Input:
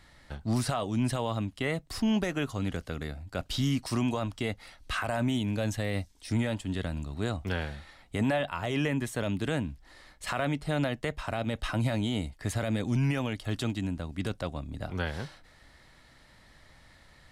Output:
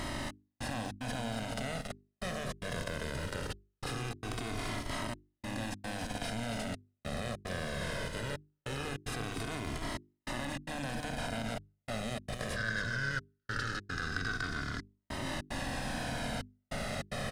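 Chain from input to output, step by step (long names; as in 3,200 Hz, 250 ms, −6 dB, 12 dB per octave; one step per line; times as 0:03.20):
compressor on every frequency bin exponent 0.2
output level in coarse steps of 14 dB
single-tap delay 277 ms −6 dB
surface crackle 460 per second −42 dBFS
0:12.56–0:14.83: drawn EQ curve 160 Hz 0 dB, 940 Hz −9 dB, 1,500 Hz +14 dB, 2,400 Hz −6 dB, 5,000 Hz +6 dB, 9,500 Hz −9 dB
gate pattern "xxx...xxx.xxxxxx" 149 BPM −60 dB
mains-hum notches 50/100/150/200/250/300/350/400 Hz
flanger whose copies keep moving one way falling 0.2 Hz
level −5 dB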